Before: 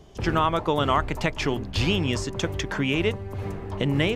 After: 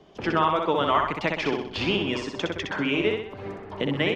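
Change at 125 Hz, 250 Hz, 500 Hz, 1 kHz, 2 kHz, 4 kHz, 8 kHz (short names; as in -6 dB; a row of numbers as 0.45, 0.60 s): -7.5, -1.0, +1.0, +1.0, +1.0, -0.5, -9.5 dB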